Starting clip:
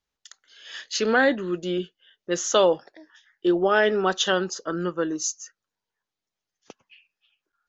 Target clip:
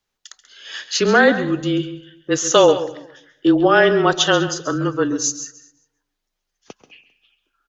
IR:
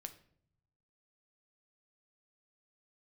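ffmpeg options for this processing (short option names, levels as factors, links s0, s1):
-filter_complex "[0:a]aecho=1:1:199|398:0.0891|0.0241,asplit=2[s0][s1];[1:a]atrim=start_sample=2205,adelay=135[s2];[s1][s2]afir=irnorm=-1:irlink=0,volume=0.398[s3];[s0][s3]amix=inputs=2:normalize=0,afreqshift=-26,volume=2.11"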